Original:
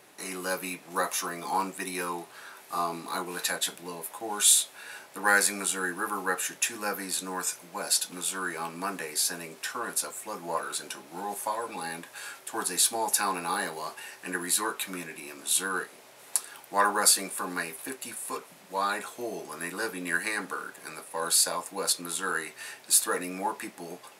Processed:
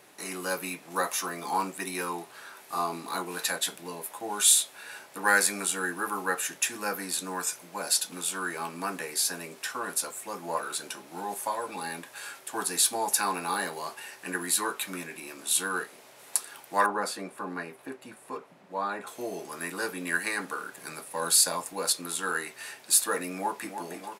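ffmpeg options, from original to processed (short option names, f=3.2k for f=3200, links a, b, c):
-filter_complex "[0:a]asettb=1/sr,asplit=3[a][b][c];[a]atrim=end=16.864[d];[b]atrim=start=16.86:end=19.07,asetpts=PTS-STARTPTS,afade=t=in:d=0.004:c=qsin,afade=t=out:st=2.206:d=0.004:c=qsin,lowpass=f=1.1k:p=1[e];[c]atrim=start=19.066[f];[d][e]acrossfade=d=0.004:c1=hsin:c2=qsin[g];[g][f]acrossfade=d=0.004:c1=qsin:c2=hsin,asettb=1/sr,asplit=3[h][i][j];[h]atrim=end=20.734[k];[i]atrim=start=20.73:end=21.73,asetpts=PTS-STARTPTS,afade=t=in:d=0.004:c=qsin,afade=t=out:st=0.996:d=0.004:c=qsin,bass=f=250:g=5,treble=f=4k:g=2[l];[j]atrim=start=21.726[m];[k][l]acrossfade=d=0.004:c1=hsin:c2=qsin[n];[n][m]acrossfade=d=0.004:c1=qsin:c2=hsin,asplit=2[o][p];[p]afade=t=in:st=23.32:d=0.01,afade=t=out:st=23.74:d=0.01,aecho=0:1:310|620|930|1240|1550|1860|2170|2480|2790|3100|3410|3720:0.398107|0.29858|0.223935|0.167951|0.125964|0.0944727|0.0708545|0.0531409|0.0398557|0.0298918|0.0224188|0.0168141[q];[o][q]amix=inputs=2:normalize=0"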